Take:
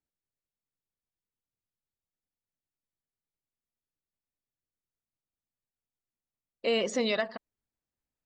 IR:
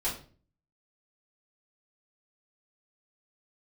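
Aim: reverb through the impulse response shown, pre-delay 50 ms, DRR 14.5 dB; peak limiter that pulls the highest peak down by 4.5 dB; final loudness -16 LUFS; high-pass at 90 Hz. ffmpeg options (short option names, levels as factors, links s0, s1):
-filter_complex "[0:a]highpass=90,alimiter=limit=0.0891:level=0:latency=1,asplit=2[s0][s1];[1:a]atrim=start_sample=2205,adelay=50[s2];[s1][s2]afir=irnorm=-1:irlink=0,volume=0.0944[s3];[s0][s3]amix=inputs=2:normalize=0,volume=6.31"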